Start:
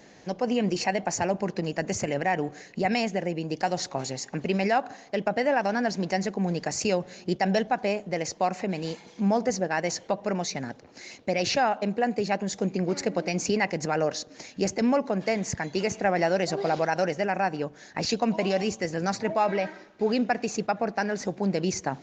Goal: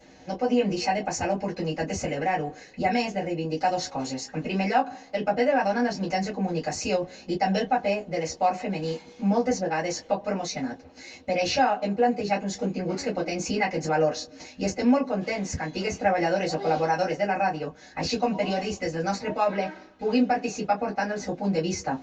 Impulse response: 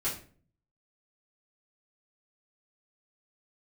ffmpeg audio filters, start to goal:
-filter_complex "[1:a]atrim=start_sample=2205,atrim=end_sample=3969,asetrate=83790,aresample=44100[link_01];[0:a][link_01]afir=irnorm=-1:irlink=0"

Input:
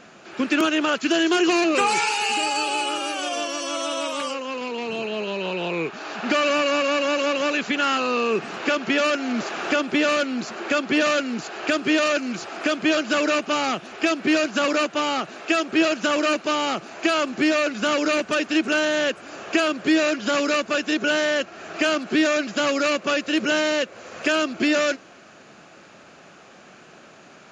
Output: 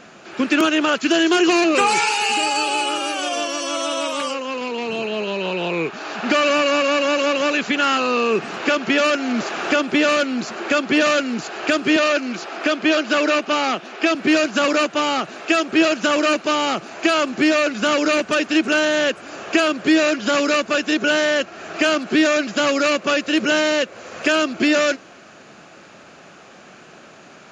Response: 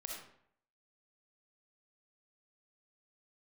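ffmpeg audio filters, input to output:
-filter_complex "[0:a]asettb=1/sr,asplit=3[link_01][link_02][link_03];[link_01]atrim=end=11.964[link_04];[link_02]atrim=start=11.96:end=14.15,asetpts=PTS-STARTPTS,afade=type=in:duration=0.004:curve=qsin,afade=type=out:start_time=2.186:duration=0.004:curve=qsin,acrossover=split=180 7100:gain=0.141 1 0.141[link_05][link_06][link_07];[link_05][link_06][link_07]amix=inputs=3:normalize=0[link_08];[link_03]atrim=start=14.146[link_09];[link_04][link_08]acrossfade=duration=0.004:curve1=hsin:curve2=qsin[link_10];[link_10][link_09]acrossfade=duration=0.004:curve1=qsin:curve2=hsin,volume=3.5dB"

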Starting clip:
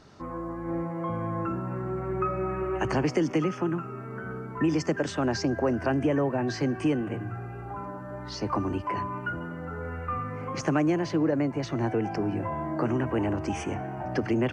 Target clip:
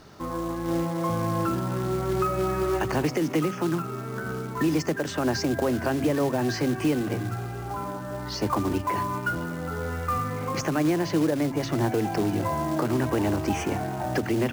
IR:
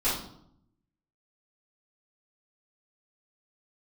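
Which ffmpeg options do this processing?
-af "alimiter=limit=-20dB:level=0:latency=1:release=199,acrusher=bits=4:mode=log:mix=0:aa=0.000001,bandreject=frequency=45.71:width_type=h:width=4,bandreject=frequency=91.42:width_type=h:width=4,bandreject=frequency=137.13:width_type=h:width=4,bandreject=frequency=182.84:width_type=h:width=4,bandreject=frequency=228.55:width_type=h:width=4,bandreject=frequency=274.26:width_type=h:width=4,volume=4.5dB"

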